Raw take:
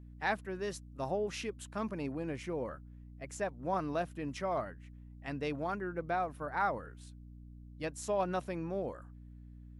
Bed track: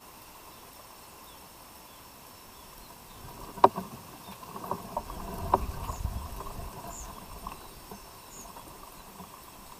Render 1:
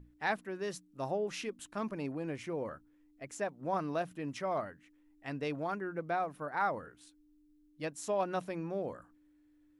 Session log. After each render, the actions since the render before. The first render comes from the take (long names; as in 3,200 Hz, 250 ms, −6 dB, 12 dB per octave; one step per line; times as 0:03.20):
mains-hum notches 60/120/180/240 Hz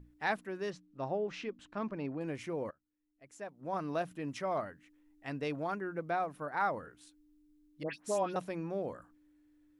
0:00.70–0:02.21: high-frequency loss of the air 160 metres
0:02.71–0:03.95: fade in quadratic, from −23.5 dB
0:07.83–0:08.36: all-pass dispersion highs, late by 110 ms, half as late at 2,000 Hz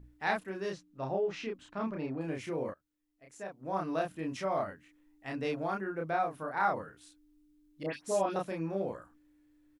double-tracking delay 31 ms −2 dB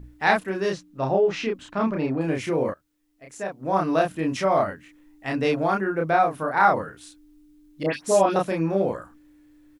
level +11.5 dB